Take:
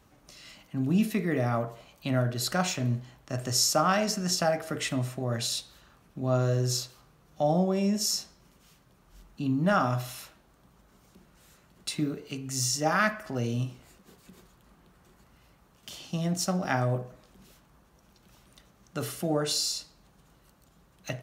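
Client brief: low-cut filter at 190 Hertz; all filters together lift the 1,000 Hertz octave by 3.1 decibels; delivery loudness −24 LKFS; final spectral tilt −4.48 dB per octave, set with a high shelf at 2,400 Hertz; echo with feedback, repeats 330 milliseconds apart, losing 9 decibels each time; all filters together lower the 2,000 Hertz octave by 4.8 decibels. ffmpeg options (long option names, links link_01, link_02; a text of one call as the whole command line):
ffmpeg -i in.wav -af "highpass=190,equalizer=frequency=1000:width_type=o:gain=8,equalizer=frequency=2000:width_type=o:gain=-9,highshelf=frequency=2400:gain=-4.5,aecho=1:1:330|660|990|1320:0.355|0.124|0.0435|0.0152,volume=5.5dB" out.wav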